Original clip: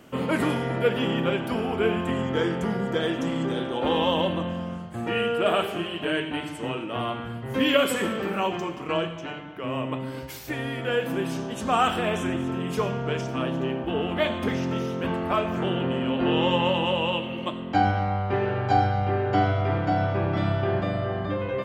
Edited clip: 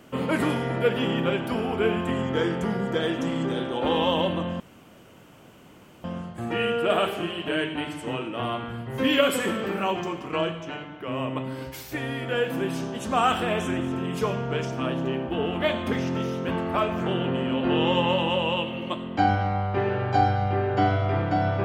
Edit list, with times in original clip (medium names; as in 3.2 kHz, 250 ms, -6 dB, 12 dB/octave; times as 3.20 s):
4.60 s: insert room tone 1.44 s